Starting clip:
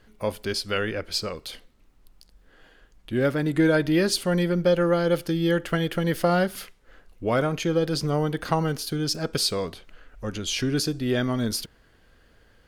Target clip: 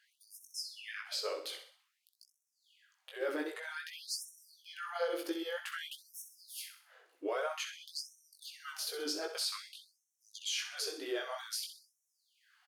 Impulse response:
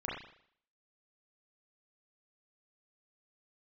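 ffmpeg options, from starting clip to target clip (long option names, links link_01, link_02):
-af "bandreject=frequency=58.21:width_type=h:width=4,bandreject=frequency=116.42:width_type=h:width=4,bandreject=frequency=174.63:width_type=h:width=4,alimiter=limit=-20.5dB:level=0:latency=1:release=71,flanger=delay=17:depth=3.9:speed=2.8,aecho=1:1:64|128|192|256|320:0.355|0.153|0.0656|0.0282|0.0121,afftfilt=real='re*gte(b*sr/1024,290*pow(5500/290,0.5+0.5*sin(2*PI*0.52*pts/sr)))':imag='im*gte(b*sr/1024,290*pow(5500/290,0.5+0.5*sin(2*PI*0.52*pts/sr)))':win_size=1024:overlap=0.75,volume=-2.5dB"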